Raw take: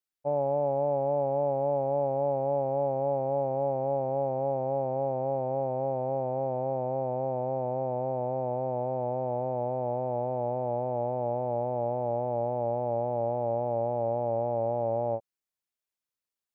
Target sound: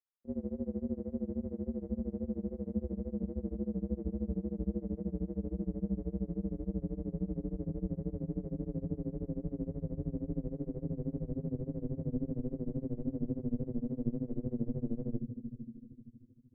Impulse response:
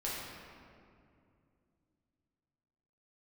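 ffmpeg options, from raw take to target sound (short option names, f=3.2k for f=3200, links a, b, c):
-filter_complex "[0:a]lowshelf=f=290:g=-9.5,highpass=f=170:t=q:w=0.5412,highpass=f=170:t=q:w=1.307,lowpass=f=2.1k:t=q:w=0.5176,lowpass=f=2.1k:t=q:w=0.7071,lowpass=f=2.1k:t=q:w=1.932,afreqshift=-340,asplit=2[a][b];[b]asubboost=boost=8:cutoff=220[c];[1:a]atrim=start_sample=2205[d];[c][d]afir=irnorm=-1:irlink=0,volume=-13dB[e];[a][e]amix=inputs=2:normalize=0,tremolo=f=13:d=0.92,volume=-6dB"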